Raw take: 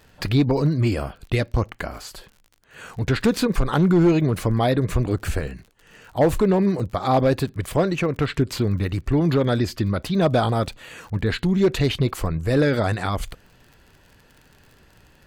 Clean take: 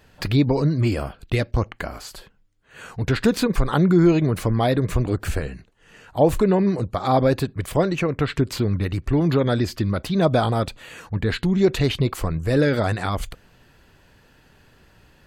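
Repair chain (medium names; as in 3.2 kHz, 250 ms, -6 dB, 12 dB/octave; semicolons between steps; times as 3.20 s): clip repair -11 dBFS; de-click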